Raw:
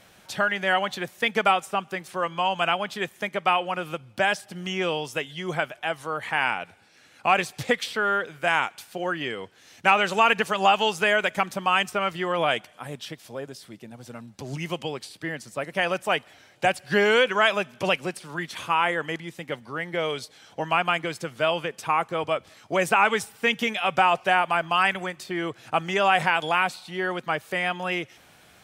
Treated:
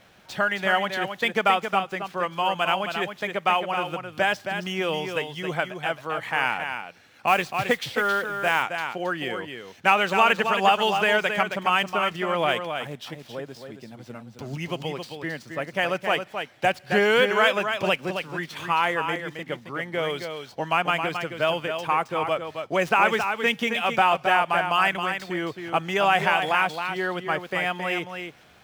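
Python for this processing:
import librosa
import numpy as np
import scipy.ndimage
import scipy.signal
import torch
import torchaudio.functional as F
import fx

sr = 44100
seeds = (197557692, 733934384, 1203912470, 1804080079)

y = scipy.signal.medfilt(x, 5)
y = y + 10.0 ** (-7.0 / 20.0) * np.pad(y, (int(269 * sr / 1000.0), 0))[:len(y)]
y = fx.mod_noise(y, sr, seeds[0], snr_db=24, at=(7.27, 8.63))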